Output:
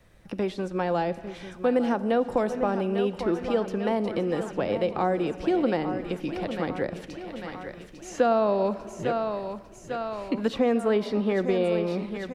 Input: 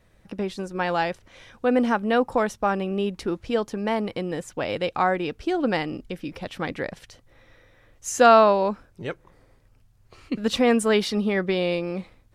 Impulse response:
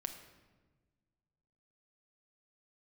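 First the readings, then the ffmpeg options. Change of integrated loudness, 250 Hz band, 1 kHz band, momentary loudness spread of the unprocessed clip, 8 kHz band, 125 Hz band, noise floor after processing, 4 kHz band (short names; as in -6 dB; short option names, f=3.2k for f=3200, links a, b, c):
-3.5 dB, -1.0 dB, -5.5 dB, 15 LU, under -10 dB, -0.5 dB, -46 dBFS, -8.0 dB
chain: -filter_complex "[0:a]aecho=1:1:848|1696|2544|3392|4240|5088:0.237|0.128|0.0691|0.0373|0.0202|0.0109,asplit=2[a][b];[1:a]atrim=start_sample=2205[c];[b][c]afir=irnorm=-1:irlink=0,volume=-3.5dB[d];[a][d]amix=inputs=2:normalize=0,acrossover=split=250|710|1500|3900[e][f][g][h][i];[e]acompressor=threshold=-33dB:ratio=4[j];[f]acompressor=threshold=-20dB:ratio=4[k];[g]acompressor=threshold=-38dB:ratio=4[l];[h]acompressor=threshold=-42dB:ratio=4[m];[i]acompressor=threshold=-53dB:ratio=4[n];[j][k][l][m][n]amix=inputs=5:normalize=0,volume=-1.5dB"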